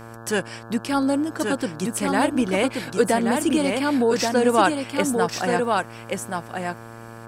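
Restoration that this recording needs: de-hum 114.6 Hz, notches 15; inverse comb 1129 ms -4 dB

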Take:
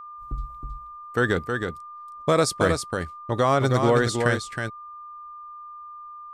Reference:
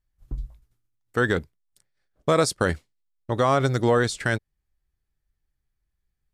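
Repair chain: clip repair -10 dBFS; band-stop 1.2 kHz, Q 30; inverse comb 318 ms -5.5 dB

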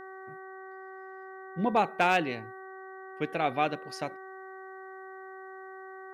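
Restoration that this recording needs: clip repair -14.5 dBFS; de-hum 380.4 Hz, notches 5

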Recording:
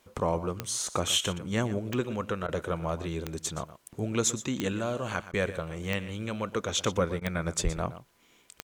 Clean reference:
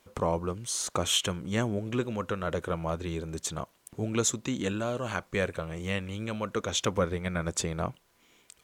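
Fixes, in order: de-click; 7.63–7.75 s: high-pass 140 Hz 24 dB/octave; interpolate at 2.47/5.32/7.20 s, 13 ms; inverse comb 120 ms -14.5 dB

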